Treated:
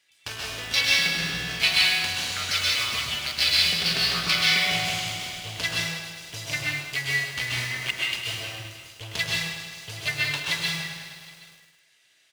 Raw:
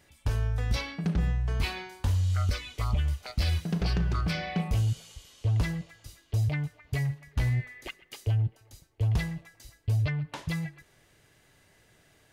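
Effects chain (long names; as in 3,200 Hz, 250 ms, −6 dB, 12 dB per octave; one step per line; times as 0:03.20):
meter weighting curve D
on a send: single-tap delay 770 ms −16 dB
on the sum: power curve on the samples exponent 1.4
in parallel at −6 dB: comparator with hysteresis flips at −41.5 dBFS
on the sum: high-pass filter 76 Hz
tilt shelving filter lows −6 dB, about 680 Hz
dense smooth reverb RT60 0.76 s, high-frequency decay 1×, pre-delay 115 ms, DRR −3.5 dB
feedback echo at a low word length 104 ms, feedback 80%, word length 8 bits, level −10 dB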